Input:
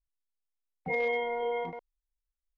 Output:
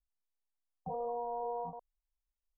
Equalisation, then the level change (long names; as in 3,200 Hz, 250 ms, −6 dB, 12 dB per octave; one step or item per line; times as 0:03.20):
Butterworth low-pass 1,200 Hz 72 dB per octave
phaser with its sweep stopped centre 850 Hz, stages 4
−1.5 dB